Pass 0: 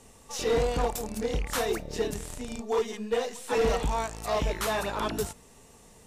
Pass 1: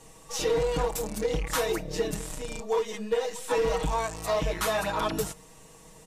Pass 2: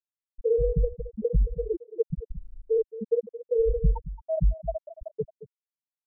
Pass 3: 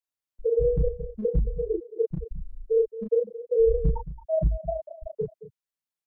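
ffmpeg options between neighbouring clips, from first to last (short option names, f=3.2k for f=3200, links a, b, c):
-af "equalizer=f=1k:t=o:w=0.32:g=2.5,aecho=1:1:6.3:0.95,acompressor=threshold=-23dB:ratio=4"
-filter_complex "[0:a]lowshelf=f=310:g=10.5,afftfilt=real='re*gte(hypot(re,im),0.631)':imag='im*gte(hypot(re,im),0.631)':win_size=1024:overlap=0.75,asplit=2[a][b];[b]adelay=221.6,volume=-15dB,highshelf=f=4k:g=-4.99[c];[a][c]amix=inputs=2:normalize=0"
-filter_complex "[0:a]acrossover=split=130|220|380[a][b][c][d];[b]aeval=exprs='clip(val(0),-1,0.00794)':c=same[e];[a][e][c][d]amix=inputs=4:normalize=0,asplit=2[f][g];[g]adelay=33,volume=-2.5dB[h];[f][h]amix=inputs=2:normalize=0"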